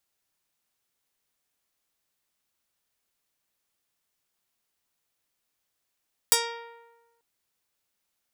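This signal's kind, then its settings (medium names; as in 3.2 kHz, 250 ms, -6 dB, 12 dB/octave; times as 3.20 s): plucked string A#4, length 0.89 s, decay 1.20 s, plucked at 0.22, medium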